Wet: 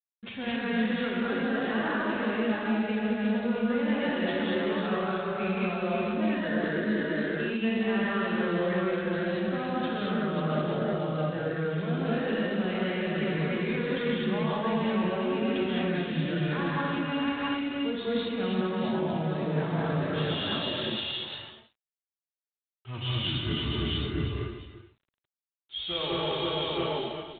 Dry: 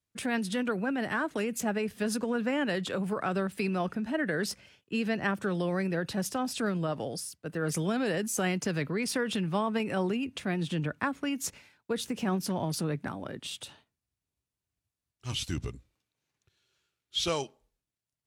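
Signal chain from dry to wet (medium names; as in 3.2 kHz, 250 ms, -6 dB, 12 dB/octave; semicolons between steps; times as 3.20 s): backward echo that repeats 114 ms, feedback 47%, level -13.5 dB; doubling 38 ms -8.5 dB; multi-tap echo 92/131/214/445 ms -17.5/-11.5/-5/-6 dB; in parallel at -11.5 dB: saturation -26 dBFS, distortion -12 dB; on the sum: time stretch by phase-locked vocoder 1.5×; gate with hold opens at -51 dBFS; reverse; compression 12:1, threshold -39 dBFS, peak gain reduction 18.5 dB; reverse; gated-style reverb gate 260 ms rising, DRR -5 dB; trim +7 dB; G.726 24 kbps 8 kHz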